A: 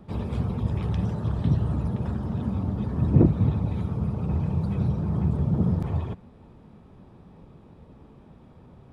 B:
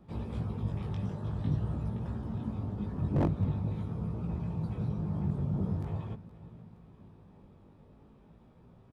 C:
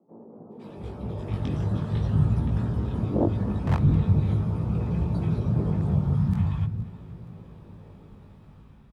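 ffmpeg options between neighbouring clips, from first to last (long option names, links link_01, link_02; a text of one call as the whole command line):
ffmpeg -i in.wav -af "aecho=1:1:469|938|1407|1876:0.126|0.0667|0.0354|0.0187,flanger=delay=17.5:depth=3.1:speed=0.46,aeval=exprs='0.178*(abs(mod(val(0)/0.178+3,4)-2)-1)':channel_layout=same,volume=-5dB" out.wav
ffmpeg -i in.wav -filter_complex "[0:a]dynaudnorm=framelen=120:gausssize=13:maxgain=10dB,acrossover=split=230|830[link_01][link_02][link_03];[link_03]adelay=510[link_04];[link_01]adelay=680[link_05];[link_05][link_02][link_04]amix=inputs=3:normalize=0" out.wav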